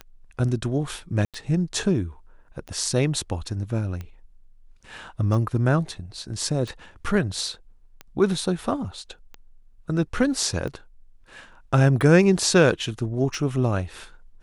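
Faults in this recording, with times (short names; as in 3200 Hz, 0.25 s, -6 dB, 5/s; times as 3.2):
tick 45 rpm -22 dBFS
1.25–1.34 gap 87 ms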